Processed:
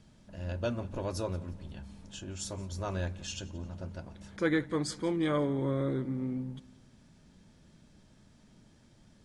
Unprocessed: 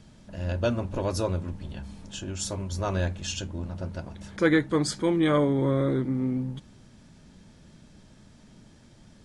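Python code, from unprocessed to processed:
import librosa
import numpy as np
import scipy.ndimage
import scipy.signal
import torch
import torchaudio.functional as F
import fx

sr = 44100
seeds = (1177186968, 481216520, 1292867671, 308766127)

y = fx.echo_feedback(x, sr, ms=176, feedback_pct=46, wet_db=-21.5)
y = y * librosa.db_to_amplitude(-7.0)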